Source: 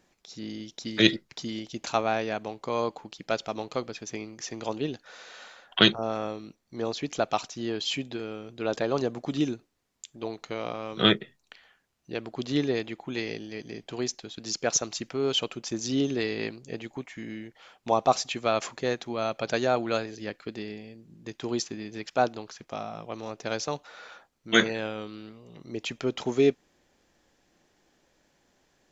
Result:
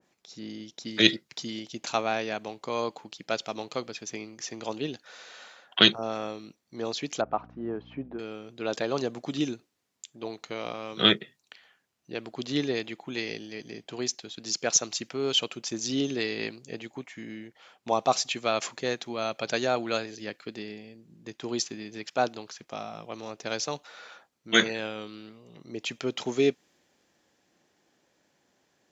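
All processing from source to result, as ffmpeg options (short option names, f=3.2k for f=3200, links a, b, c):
-filter_complex "[0:a]asettb=1/sr,asplit=3[a][b][c];[a]atrim=end=7.214[d];[b]atrim=start=7.21:end=8.19,asetpts=PTS-STARTPTS,afade=t=in:d=0.004:c=qsin,afade=t=out:st=0.976:d=0.004:c=qsin,lowpass=f=1.3k:w=0.5412,lowpass=f=1.3k:w=1.3066,aemphasis=mode=production:type=75kf,aeval=exprs='val(0)+0.00631*(sin(2*PI*60*n/s)+sin(2*PI*2*60*n/s)/2+sin(2*PI*3*60*n/s)/3+sin(2*PI*4*60*n/s)/4+sin(2*PI*5*60*n/s)/5)':c=same[e];[c]atrim=start=8.186[f];[d][e]acrossfade=d=0.004:c1=hsin:c2=qsin[g];[g][f]acrossfade=d=0.004:c1=qsin:c2=hsin,highpass=110,adynamicequalizer=threshold=0.00794:dfrequency=1900:dqfactor=0.7:tfrequency=1900:tqfactor=0.7:attack=5:release=100:ratio=0.375:range=2.5:mode=boostabove:tftype=highshelf,volume=-2dB"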